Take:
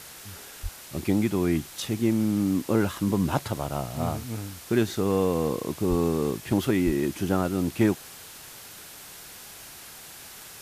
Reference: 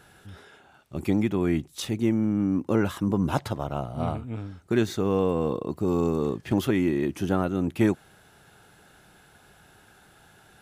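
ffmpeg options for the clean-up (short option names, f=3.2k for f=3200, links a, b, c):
-filter_complex "[0:a]asplit=3[a][b][c];[a]afade=t=out:st=0.62:d=0.02[d];[b]highpass=f=140:w=0.5412,highpass=f=140:w=1.3066,afade=t=in:st=0.62:d=0.02,afade=t=out:st=0.74:d=0.02[e];[c]afade=t=in:st=0.74:d=0.02[f];[d][e][f]amix=inputs=3:normalize=0,asplit=3[g][h][i];[g]afade=t=out:st=5.89:d=0.02[j];[h]highpass=f=140:w=0.5412,highpass=f=140:w=1.3066,afade=t=in:st=5.89:d=0.02,afade=t=out:st=6.01:d=0.02[k];[i]afade=t=in:st=6.01:d=0.02[l];[j][k][l]amix=inputs=3:normalize=0,asplit=3[m][n][o];[m]afade=t=out:st=6.85:d=0.02[p];[n]highpass=f=140:w=0.5412,highpass=f=140:w=1.3066,afade=t=in:st=6.85:d=0.02,afade=t=out:st=6.97:d=0.02[q];[o]afade=t=in:st=6.97:d=0.02[r];[p][q][r]amix=inputs=3:normalize=0,afwtdn=0.0071"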